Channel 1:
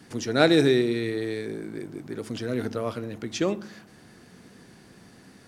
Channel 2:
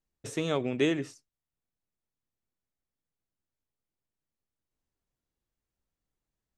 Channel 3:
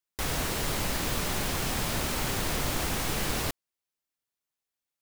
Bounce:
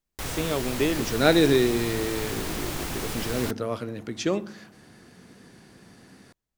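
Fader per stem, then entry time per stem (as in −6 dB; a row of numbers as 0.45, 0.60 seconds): 0.0, +1.5, −2.5 decibels; 0.85, 0.00, 0.00 seconds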